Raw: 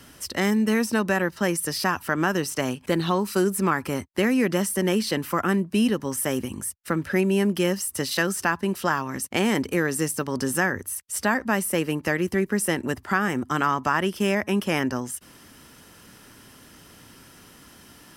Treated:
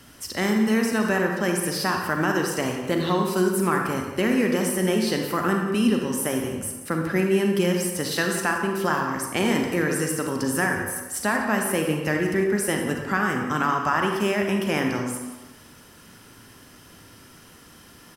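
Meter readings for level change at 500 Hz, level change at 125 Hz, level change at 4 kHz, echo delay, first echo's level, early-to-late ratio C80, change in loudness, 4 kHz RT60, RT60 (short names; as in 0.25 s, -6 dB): +1.5 dB, +0.5 dB, +0.5 dB, 0.178 s, -13.5 dB, 4.5 dB, +1.0 dB, 0.75 s, 1.2 s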